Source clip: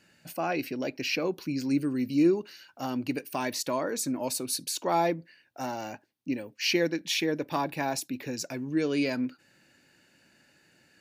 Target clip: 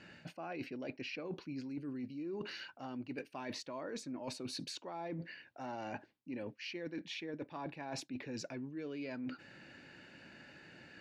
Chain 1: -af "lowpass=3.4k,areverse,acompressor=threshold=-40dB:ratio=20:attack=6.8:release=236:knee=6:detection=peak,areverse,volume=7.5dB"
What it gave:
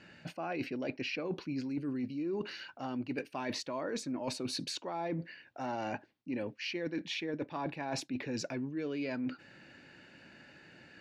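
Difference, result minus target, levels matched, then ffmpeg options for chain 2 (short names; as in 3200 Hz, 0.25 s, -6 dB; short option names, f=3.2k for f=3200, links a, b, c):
compressor: peak gain reduction -6 dB
-af "lowpass=3.4k,areverse,acompressor=threshold=-46.5dB:ratio=20:attack=6.8:release=236:knee=6:detection=peak,areverse,volume=7.5dB"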